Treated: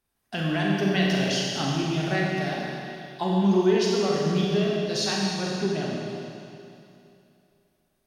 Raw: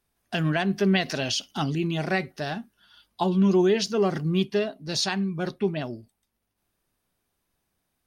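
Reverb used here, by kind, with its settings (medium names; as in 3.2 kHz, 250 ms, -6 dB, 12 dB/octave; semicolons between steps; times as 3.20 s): Schroeder reverb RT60 2.7 s, combs from 29 ms, DRR -3.5 dB; trim -4 dB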